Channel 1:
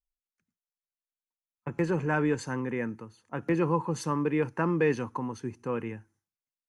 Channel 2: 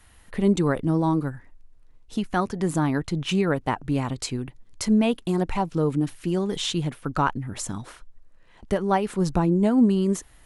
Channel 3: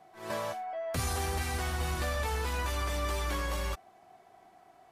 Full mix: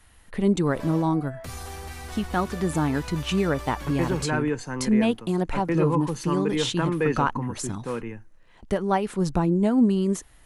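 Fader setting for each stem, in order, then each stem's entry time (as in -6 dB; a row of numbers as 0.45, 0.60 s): +1.0, -1.0, -5.0 dB; 2.20, 0.00, 0.50 s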